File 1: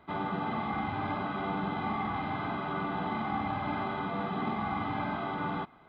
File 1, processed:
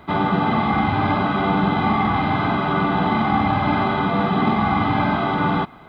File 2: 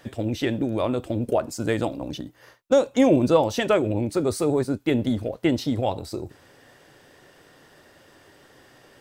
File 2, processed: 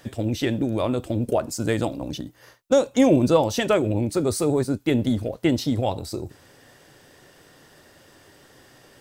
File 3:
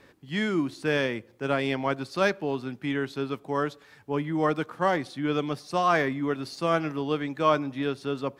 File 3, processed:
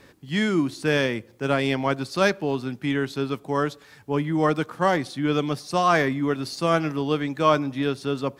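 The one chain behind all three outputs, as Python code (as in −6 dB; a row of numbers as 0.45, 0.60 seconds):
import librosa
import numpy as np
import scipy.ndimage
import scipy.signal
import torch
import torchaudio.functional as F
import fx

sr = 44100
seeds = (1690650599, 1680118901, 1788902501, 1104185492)

y = fx.bass_treble(x, sr, bass_db=3, treble_db=5)
y = y * 10.0 ** (-6 / 20.0) / np.max(np.abs(y))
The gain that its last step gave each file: +13.0, 0.0, +3.0 decibels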